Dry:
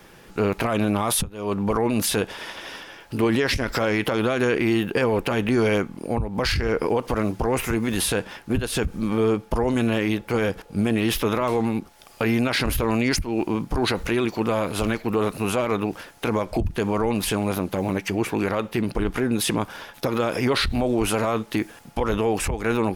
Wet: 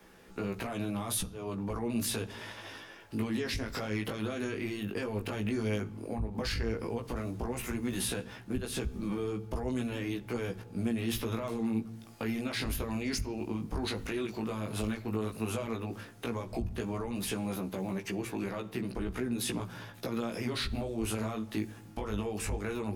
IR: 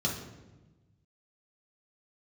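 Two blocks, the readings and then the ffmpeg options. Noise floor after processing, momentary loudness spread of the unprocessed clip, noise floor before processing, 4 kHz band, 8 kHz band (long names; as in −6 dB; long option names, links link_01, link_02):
−50 dBFS, 6 LU, −48 dBFS, −11.0 dB, −9.5 dB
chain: -filter_complex "[0:a]acrossover=split=180|3000[link_01][link_02][link_03];[link_02]acompressor=threshold=-26dB:ratio=6[link_04];[link_01][link_04][link_03]amix=inputs=3:normalize=0,flanger=delay=15.5:depth=4:speed=0.11,asplit=2[link_05][link_06];[1:a]atrim=start_sample=2205[link_07];[link_06][link_07]afir=irnorm=-1:irlink=0,volume=-21dB[link_08];[link_05][link_08]amix=inputs=2:normalize=0,volume=-6dB"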